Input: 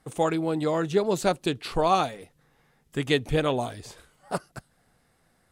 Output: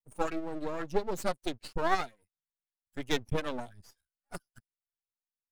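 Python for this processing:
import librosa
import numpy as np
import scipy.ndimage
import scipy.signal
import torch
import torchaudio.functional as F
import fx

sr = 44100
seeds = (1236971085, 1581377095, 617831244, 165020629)

y = fx.bin_expand(x, sr, power=2.0)
y = np.maximum(y, 0.0)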